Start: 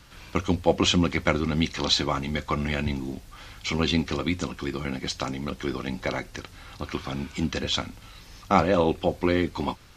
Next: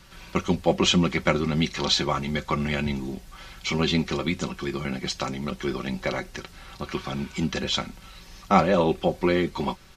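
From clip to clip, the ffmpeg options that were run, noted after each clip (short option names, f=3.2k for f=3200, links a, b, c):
-af "aecho=1:1:5.3:0.51"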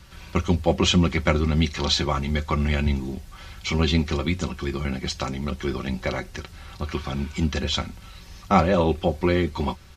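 -af "equalizer=f=78:w=1.7:g=14"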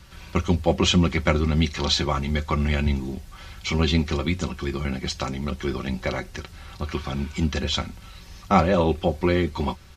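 -af anull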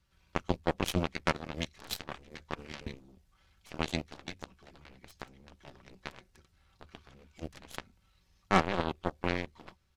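-af "aeval=exprs='0.841*(cos(1*acos(clip(val(0)/0.841,-1,1)))-cos(1*PI/2))+0.133*(cos(7*acos(clip(val(0)/0.841,-1,1)))-cos(7*PI/2))+0.0168*(cos(8*acos(clip(val(0)/0.841,-1,1)))-cos(8*PI/2))':c=same,volume=-6dB"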